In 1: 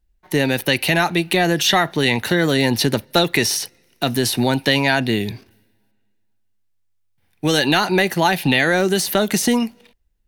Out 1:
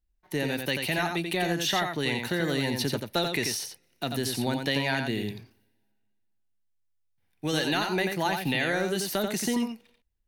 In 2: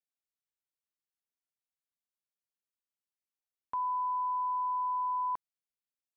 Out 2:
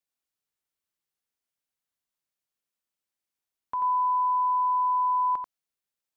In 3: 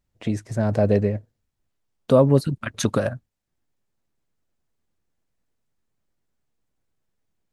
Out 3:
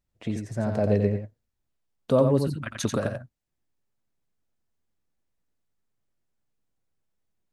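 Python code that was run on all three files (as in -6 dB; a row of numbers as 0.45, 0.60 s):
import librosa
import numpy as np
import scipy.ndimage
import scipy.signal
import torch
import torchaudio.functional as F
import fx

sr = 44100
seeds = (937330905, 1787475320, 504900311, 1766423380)

y = x + 10.0 ** (-5.5 / 20.0) * np.pad(x, (int(88 * sr / 1000.0), 0))[:len(x)]
y = y * 10.0 ** (-30 / 20.0) / np.sqrt(np.mean(np.square(y)))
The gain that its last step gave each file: -11.5, +4.0, -5.5 dB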